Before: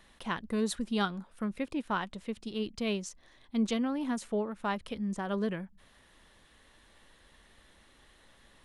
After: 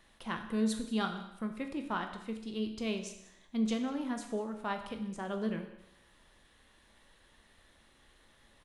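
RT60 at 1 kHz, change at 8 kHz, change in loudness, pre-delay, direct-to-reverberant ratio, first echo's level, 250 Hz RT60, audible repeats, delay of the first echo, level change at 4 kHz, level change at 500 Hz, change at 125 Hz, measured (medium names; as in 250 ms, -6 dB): 0.75 s, -2.5 dB, -2.5 dB, 12 ms, 5.0 dB, -19.0 dB, 0.75 s, 1, 195 ms, -3.0 dB, -3.5 dB, -3.0 dB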